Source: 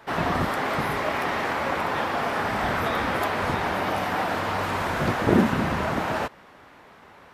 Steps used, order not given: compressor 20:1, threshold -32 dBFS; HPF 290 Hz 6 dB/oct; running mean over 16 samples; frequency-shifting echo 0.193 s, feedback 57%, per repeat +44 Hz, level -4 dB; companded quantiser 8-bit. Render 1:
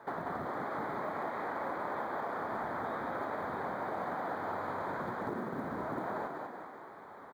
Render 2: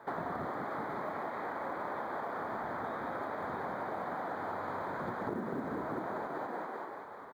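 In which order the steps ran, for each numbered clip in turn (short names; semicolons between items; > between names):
compressor > frequency-shifting echo > running mean > companded quantiser > HPF; frequency-shifting echo > HPF > compressor > running mean > companded quantiser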